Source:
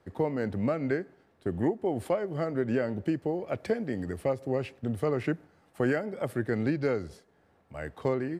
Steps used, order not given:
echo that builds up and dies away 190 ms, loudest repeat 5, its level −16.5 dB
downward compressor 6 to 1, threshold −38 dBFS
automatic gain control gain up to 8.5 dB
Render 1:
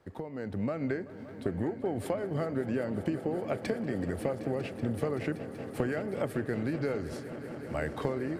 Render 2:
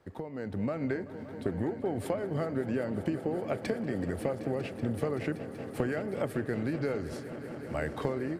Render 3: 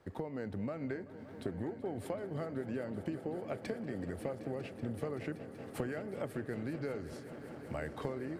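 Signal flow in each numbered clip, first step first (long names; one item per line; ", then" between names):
downward compressor, then automatic gain control, then echo that builds up and dies away
downward compressor, then echo that builds up and dies away, then automatic gain control
automatic gain control, then downward compressor, then echo that builds up and dies away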